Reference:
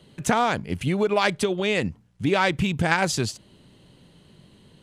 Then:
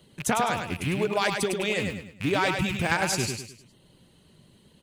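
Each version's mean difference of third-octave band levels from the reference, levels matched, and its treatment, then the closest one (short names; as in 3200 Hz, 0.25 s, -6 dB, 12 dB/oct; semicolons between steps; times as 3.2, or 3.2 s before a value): 6.5 dB: rattling part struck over -31 dBFS, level -19 dBFS; reverb removal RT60 0.64 s; high shelf 9000 Hz +11 dB; feedback echo 0.103 s, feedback 37%, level -5.5 dB; gain -4 dB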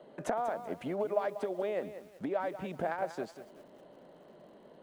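8.5 dB: three-band isolator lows -18 dB, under 230 Hz, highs -19 dB, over 2300 Hz; compressor 12:1, threshold -35 dBFS, peak gain reduction 18.5 dB; fifteen-band EQ 100 Hz -9 dB, 630 Hz +12 dB, 2500 Hz -6 dB; lo-fi delay 0.19 s, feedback 35%, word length 9-bit, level -11.5 dB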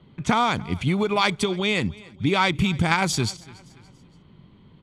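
3.5 dB: low-pass opened by the level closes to 2000 Hz, open at -20.5 dBFS; bell 3600 Hz +3 dB 0.55 oct; comb 0.9 ms, depth 43%; on a send: feedback echo 0.285 s, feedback 43%, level -22.5 dB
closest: third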